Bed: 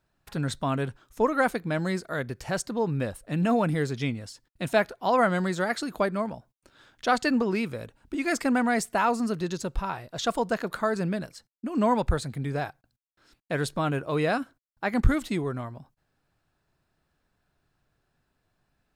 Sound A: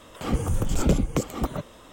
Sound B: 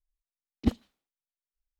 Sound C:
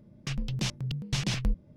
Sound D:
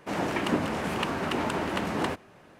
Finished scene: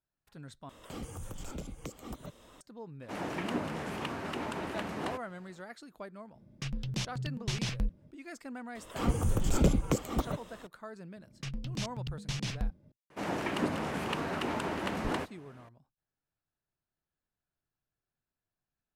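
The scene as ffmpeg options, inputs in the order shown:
ffmpeg -i bed.wav -i cue0.wav -i cue1.wav -i cue2.wav -i cue3.wav -filter_complex "[1:a]asplit=2[link_01][link_02];[4:a]asplit=2[link_03][link_04];[3:a]asplit=2[link_05][link_06];[0:a]volume=-19dB[link_07];[link_01]acrossover=split=570|2900[link_08][link_09][link_10];[link_08]acompressor=threshold=-34dB:ratio=4[link_11];[link_09]acompressor=threshold=-44dB:ratio=4[link_12];[link_10]acompressor=threshold=-44dB:ratio=4[link_13];[link_11][link_12][link_13]amix=inputs=3:normalize=0[link_14];[link_07]asplit=2[link_15][link_16];[link_15]atrim=end=0.694[link_17];[link_14]atrim=end=1.92,asetpts=PTS-STARTPTS,volume=-7.5dB[link_18];[link_16]atrim=start=2.606[link_19];[link_03]atrim=end=2.59,asetpts=PTS-STARTPTS,volume=-8dB,afade=type=in:duration=0.004:curve=hsin,afade=type=out:start_time=2.586:duration=0.004:curve=hsin,adelay=3020[link_20];[link_05]atrim=end=1.76,asetpts=PTS-STARTPTS,volume=-4dB,afade=type=in:duration=0.004:curve=hsin,afade=type=out:start_time=1.756:duration=0.004:curve=hsin,adelay=6350[link_21];[link_02]atrim=end=1.92,asetpts=PTS-STARTPTS,volume=-4dB,afade=type=in:duration=0.004:curve=hsin,afade=type=out:start_time=1.916:duration=0.004:curve=hsin,adelay=8750[link_22];[link_06]atrim=end=1.76,asetpts=PTS-STARTPTS,volume=-6dB,afade=type=in:duration=0.004:curve=hsin,afade=type=out:start_time=1.756:duration=0.004:curve=hsin,adelay=11160[link_23];[link_04]atrim=end=2.59,asetpts=PTS-STARTPTS,volume=-5dB,afade=type=in:duration=0.004:curve=hsin,afade=type=out:start_time=2.586:duration=0.004:curve=hsin,adelay=13100[link_24];[link_17][link_18]acrossfade=duration=0.004:curve1=hsin:curve2=hsin[link_25];[link_25][link_19]acrossfade=duration=0.004:curve1=hsin:curve2=hsin[link_26];[link_26][link_20][link_21][link_22][link_23][link_24]amix=inputs=6:normalize=0" out.wav

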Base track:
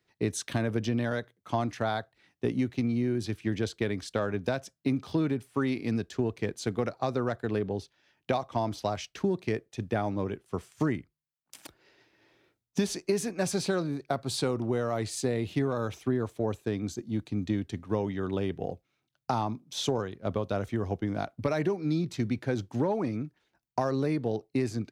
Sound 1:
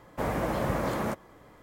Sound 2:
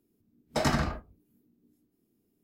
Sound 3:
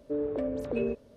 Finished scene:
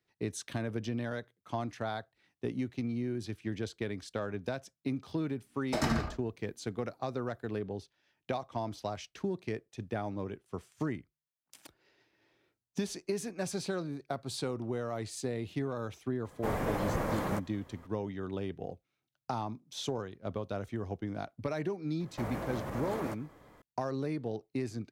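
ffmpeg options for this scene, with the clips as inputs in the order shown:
ffmpeg -i bed.wav -i cue0.wav -i cue1.wav -filter_complex "[1:a]asplit=2[link_01][link_02];[0:a]volume=-6.5dB[link_03];[link_01]afreqshift=-26[link_04];[link_02]alimiter=level_in=1.5dB:limit=-24dB:level=0:latency=1:release=107,volume=-1.5dB[link_05];[2:a]atrim=end=2.43,asetpts=PTS-STARTPTS,volume=-4.5dB,afade=type=in:duration=0.004:curve=hsin,afade=type=out:start_time=2.426:duration=0.004:curve=hsin,adelay=227997S[link_06];[link_04]atrim=end=1.62,asetpts=PTS-STARTPTS,volume=-3.5dB,afade=type=in:duration=0.004:curve=hsin,afade=type=out:start_time=1.616:duration=0.004:curve=hsin,adelay=16250[link_07];[link_05]atrim=end=1.62,asetpts=PTS-STARTPTS,volume=-4dB,afade=type=in:duration=0.004:curve=hsin,afade=type=out:start_time=1.616:duration=0.004:curve=hsin,adelay=22000[link_08];[link_03][link_06][link_07][link_08]amix=inputs=4:normalize=0" out.wav

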